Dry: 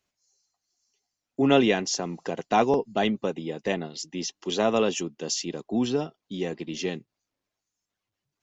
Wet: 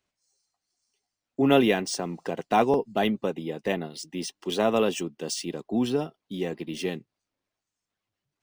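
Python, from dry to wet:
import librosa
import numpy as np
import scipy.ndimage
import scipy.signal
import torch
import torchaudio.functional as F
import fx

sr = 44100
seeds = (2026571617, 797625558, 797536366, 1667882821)

y = np.interp(np.arange(len(x)), np.arange(len(x))[::3], x[::3])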